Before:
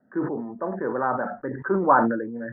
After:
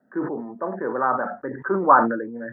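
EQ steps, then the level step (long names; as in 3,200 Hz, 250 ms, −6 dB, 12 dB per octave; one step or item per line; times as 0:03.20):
high-pass filter 210 Hz 6 dB per octave
dynamic equaliser 1,200 Hz, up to +6 dB, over −38 dBFS, Q 4.8
+1.5 dB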